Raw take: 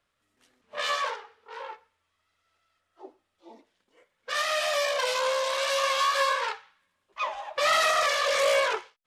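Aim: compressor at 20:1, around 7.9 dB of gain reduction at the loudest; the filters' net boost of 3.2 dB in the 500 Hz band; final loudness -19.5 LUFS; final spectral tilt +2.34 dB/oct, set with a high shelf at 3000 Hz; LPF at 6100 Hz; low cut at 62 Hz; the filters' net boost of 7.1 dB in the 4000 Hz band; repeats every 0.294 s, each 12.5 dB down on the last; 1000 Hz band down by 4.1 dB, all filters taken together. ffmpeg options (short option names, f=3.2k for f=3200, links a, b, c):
-af "highpass=62,lowpass=6.1k,equalizer=f=500:t=o:g=5.5,equalizer=f=1k:t=o:g=-7.5,highshelf=f=3k:g=8,equalizer=f=4k:t=o:g=4,acompressor=threshold=-24dB:ratio=20,aecho=1:1:294|588|882:0.237|0.0569|0.0137,volume=8dB"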